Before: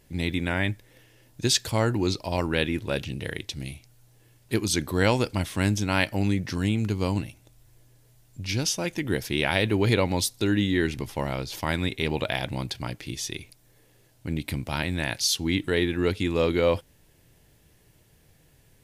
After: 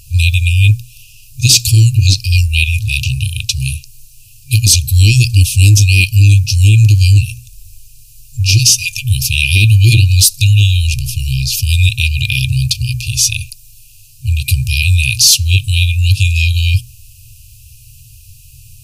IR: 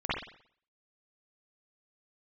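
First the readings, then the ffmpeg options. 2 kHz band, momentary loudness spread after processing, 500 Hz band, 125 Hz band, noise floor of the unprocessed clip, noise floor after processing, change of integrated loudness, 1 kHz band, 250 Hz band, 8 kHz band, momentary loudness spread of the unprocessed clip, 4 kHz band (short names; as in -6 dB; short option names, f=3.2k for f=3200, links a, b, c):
+12.5 dB, 9 LU, under -10 dB, +20.5 dB, -60 dBFS, -40 dBFS, +15.5 dB, under -30 dB, -1.5 dB, +19.0 dB, 10 LU, +16.0 dB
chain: -af "afftfilt=real='re*(1-between(b*sr/4096,130,2400))':imag='im*(1-between(b*sr/4096,130,2400))':win_size=4096:overlap=0.75,equalizer=f=3.4k:w=3.3:g=-10,bandreject=f=60:t=h:w=6,bandreject=f=120:t=h:w=6,bandreject=f=180:t=h:w=6,bandreject=f=240:t=h:w=6,bandreject=f=300:t=h:w=6,bandreject=f=360:t=h:w=6,apsyclip=25dB,volume=-2dB"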